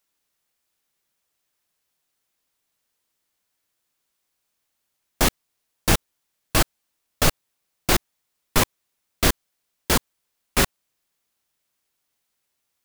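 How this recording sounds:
background noise floor −77 dBFS
spectral slope −3.0 dB per octave

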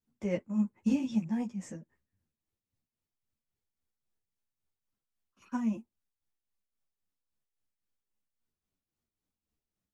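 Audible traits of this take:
tremolo triangle 3.7 Hz, depth 65%
a shimmering, thickened sound

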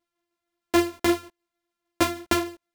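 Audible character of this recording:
a buzz of ramps at a fixed pitch in blocks of 128 samples
tremolo saw down 6.5 Hz, depth 35%
a shimmering, thickened sound

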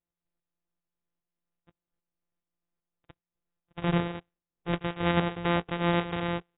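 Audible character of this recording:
a buzz of ramps at a fixed pitch in blocks of 256 samples
tremolo saw up 2.5 Hz, depth 50%
AAC

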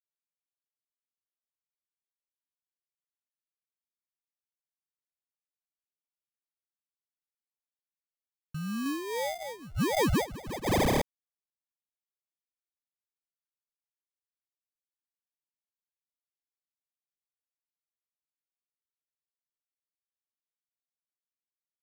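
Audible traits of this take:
phaser sweep stages 4, 2.3 Hz, lowest notch 540–1,500 Hz
aliases and images of a low sample rate 1,400 Hz, jitter 0%
sample-and-hold tremolo
a quantiser's noise floor 12 bits, dither none

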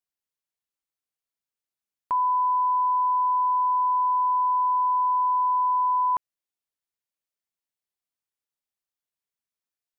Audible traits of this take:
background noise floor −92 dBFS
spectral slope −2.5 dB per octave

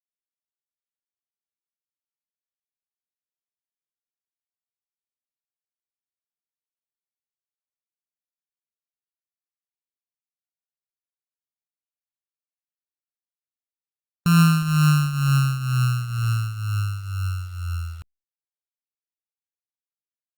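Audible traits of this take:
a buzz of ramps at a fixed pitch in blocks of 32 samples
tremolo triangle 2.1 Hz, depth 75%
a quantiser's noise floor 10 bits, dither none
Opus

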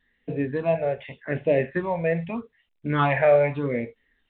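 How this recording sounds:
phaser sweep stages 6, 0.83 Hz, lowest notch 270–1,300 Hz
mu-law

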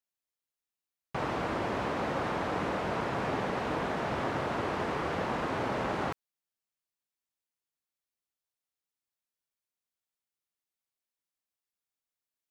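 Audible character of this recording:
background noise floor −92 dBFS
spectral slope −4.5 dB per octave

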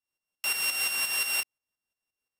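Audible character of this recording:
a buzz of ramps at a fixed pitch in blocks of 16 samples
tremolo saw up 5.7 Hz, depth 65%
AAC

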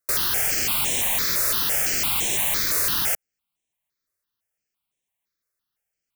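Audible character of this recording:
notches that jump at a steady rate 5.9 Hz 840–4,700 Hz

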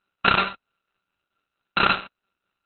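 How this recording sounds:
a buzz of ramps at a fixed pitch in blocks of 32 samples
tremolo triangle 4.5 Hz, depth 50%
aliases and images of a low sample rate 6,700 Hz, jitter 0%
Opus

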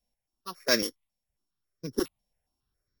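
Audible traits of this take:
a buzz of ramps at a fixed pitch in blocks of 8 samples
notches that jump at a steady rate 7.3 Hz 360–2,900 Hz

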